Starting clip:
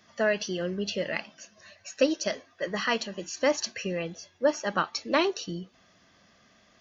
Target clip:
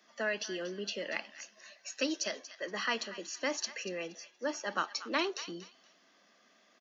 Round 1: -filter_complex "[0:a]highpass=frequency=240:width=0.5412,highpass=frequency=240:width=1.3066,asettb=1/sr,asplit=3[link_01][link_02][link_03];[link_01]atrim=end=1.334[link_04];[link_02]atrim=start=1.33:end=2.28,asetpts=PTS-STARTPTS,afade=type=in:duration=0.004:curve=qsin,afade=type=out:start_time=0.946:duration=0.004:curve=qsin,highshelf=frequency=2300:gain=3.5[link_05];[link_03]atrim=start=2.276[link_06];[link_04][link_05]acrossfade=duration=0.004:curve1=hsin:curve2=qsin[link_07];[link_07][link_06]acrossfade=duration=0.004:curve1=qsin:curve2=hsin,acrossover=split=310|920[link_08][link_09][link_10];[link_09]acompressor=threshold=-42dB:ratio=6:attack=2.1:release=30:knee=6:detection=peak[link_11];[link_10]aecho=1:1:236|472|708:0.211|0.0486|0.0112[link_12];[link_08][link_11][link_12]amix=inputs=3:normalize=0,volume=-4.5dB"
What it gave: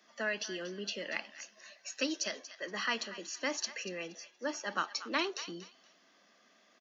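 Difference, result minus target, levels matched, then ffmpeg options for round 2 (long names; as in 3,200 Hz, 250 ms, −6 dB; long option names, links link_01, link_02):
downward compressor: peak gain reduction +6 dB
-filter_complex "[0:a]highpass=frequency=240:width=0.5412,highpass=frequency=240:width=1.3066,asettb=1/sr,asplit=3[link_01][link_02][link_03];[link_01]atrim=end=1.334[link_04];[link_02]atrim=start=1.33:end=2.28,asetpts=PTS-STARTPTS,afade=type=in:duration=0.004:curve=qsin,afade=type=out:start_time=0.946:duration=0.004:curve=qsin,highshelf=frequency=2300:gain=3.5[link_05];[link_03]atrim=start=2.276[link_06];[link_04][link_05]acrossfade=duration=0.004:curve1=hsin:curve2=qsin[link_07];[link_07][link_06]acrossfade=duration=0.004:curve1=qsin:curve2=hsin,acrossover=split=310|920[link_08][link_09][link_10];[link_09]acompressor=threshold=-35dB:ratio=6:attack=2.1:release=30:knee=6:detection=peak[link_11];[link_10]aecho=1:1:236|472|708:0.211|0.0486|0.0112[link_12];[link_08][link_11][link_12]amix=inputs=3:normalize=0,volume=-4.5dB"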